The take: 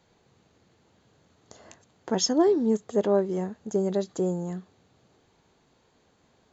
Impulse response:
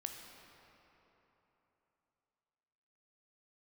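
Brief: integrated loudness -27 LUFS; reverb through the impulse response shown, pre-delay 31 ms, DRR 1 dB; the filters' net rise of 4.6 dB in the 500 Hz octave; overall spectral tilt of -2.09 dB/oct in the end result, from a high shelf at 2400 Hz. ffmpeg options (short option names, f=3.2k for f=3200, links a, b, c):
-filter_complex "[0:a]equalizer=f=500:t=o:g=6.5,highshelf=f=2.4k:g=-5,asplit=2[a][b];[1:a]atrim=start_sample=2205,adelay=31[c];[b][c]afir=irnorm=-1:irlink=0,volume=1dB[d];[a][d]amix=inputs=2:normalize=0,volume=-6.5dB"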